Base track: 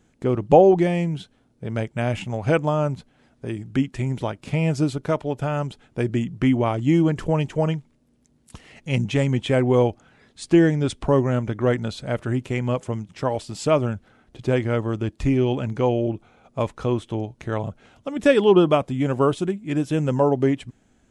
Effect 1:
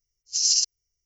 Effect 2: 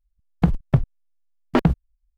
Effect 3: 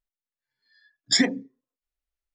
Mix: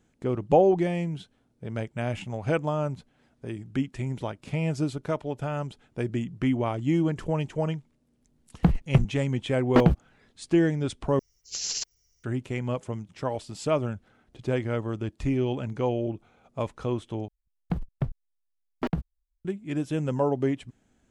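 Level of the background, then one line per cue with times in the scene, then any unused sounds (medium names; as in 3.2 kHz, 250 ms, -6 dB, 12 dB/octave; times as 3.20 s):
base track -6 dB
8.21 s: add 2 -2.5 dB
11.19 s: replace with 1 -10 dB + spectrum-flattening compressor 2:1
17.28 s: replace with 2 -11 dB
not used: 3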